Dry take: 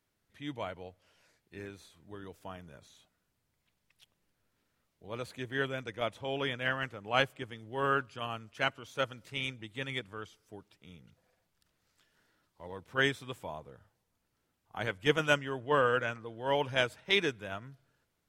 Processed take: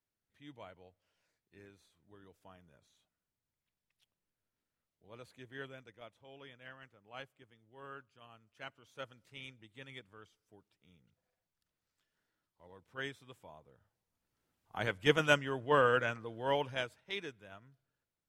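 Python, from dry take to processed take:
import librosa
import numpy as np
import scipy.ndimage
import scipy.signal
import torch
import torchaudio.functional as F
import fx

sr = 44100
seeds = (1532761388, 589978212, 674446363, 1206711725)

y = fx.gain(x, sr, db=fx.line((5.69, -13.0), (6.11, -20.0), (8.29, -20.0), (9.01, -13.0), (13.61, -13.0), (14.76, -0.5), (16.44, -0.5), (17.02, -13.0)))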